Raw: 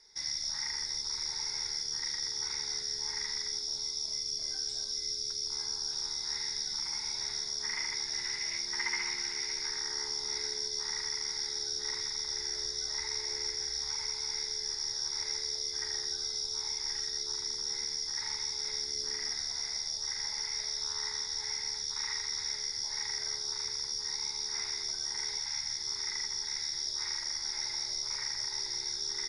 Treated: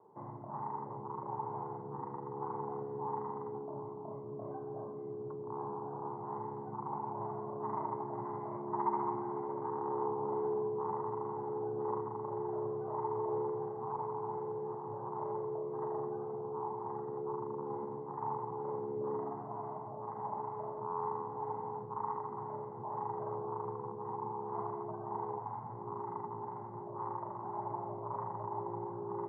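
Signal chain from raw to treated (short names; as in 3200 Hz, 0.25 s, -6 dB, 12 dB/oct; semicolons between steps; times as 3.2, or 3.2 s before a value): Chebyshev band-pass 110–1100 Hz, order 5; gain +15 dB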